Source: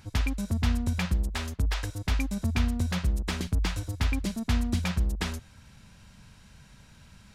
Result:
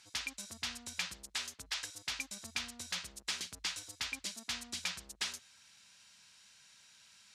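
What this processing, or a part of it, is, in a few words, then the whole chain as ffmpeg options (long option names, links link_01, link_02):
piezo pickup straight into a mixer: -af "lowpass=6400,aderivative,volume=6dB"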